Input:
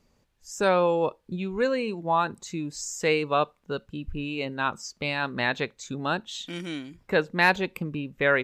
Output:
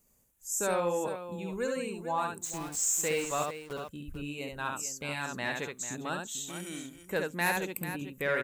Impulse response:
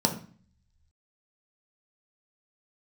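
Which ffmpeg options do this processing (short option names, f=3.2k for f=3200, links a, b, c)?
-filter_complex "[0:a]aexciter=amount=13.5:drive=2.9:freq=6.9k,asplit=3[a][b][c];[a]afade=t=out:st=2.43:d=0.02[d];[b]aeval=exprs='val(0)*gte(abs(val(0)),0.0299)':c=same,afade=t=in:st=2.43:d=0.02,afade=t=out:st=3.72:d=0.02[e];[c]afade=t=in:st=3.72:d=0.02[f];[d][e][f]amix=inputs=3:normalize=0,asplit=2[g][h];[h]aecho=0:1:69|444:0.631|0.266[i];[g][i]amix=inputs=2:normalize=0,asoftclip=type=tanh:threshold=-8.5dB,volume=-8.5dB"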